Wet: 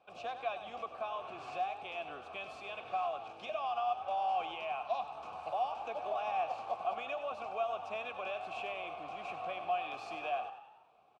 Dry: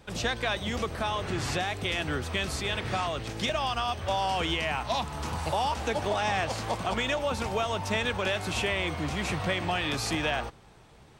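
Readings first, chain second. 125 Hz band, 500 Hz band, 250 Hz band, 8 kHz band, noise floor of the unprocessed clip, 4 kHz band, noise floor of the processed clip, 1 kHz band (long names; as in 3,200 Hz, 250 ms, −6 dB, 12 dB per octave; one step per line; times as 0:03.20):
below −25 dB, −7.5 dB, −22.0 dB, below −25 dB, −54 dBFS, −17.5 dB, −58 dBFS, −4.0 dB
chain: formant filter a
on a send: echo with shifted repeats 95 ms, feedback 50%, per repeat +37 Hz, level −11 dB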